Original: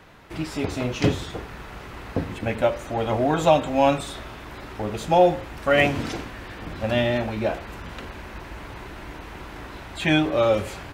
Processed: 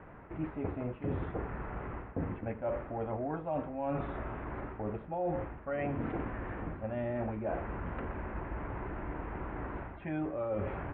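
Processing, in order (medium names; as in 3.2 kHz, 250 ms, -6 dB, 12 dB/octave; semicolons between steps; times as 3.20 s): Bessel low-pass 1.3 kHz, order 8; reverse; compression 10:1, threshold -32 dBFS, peak gain reduction 19.5 dB; reverse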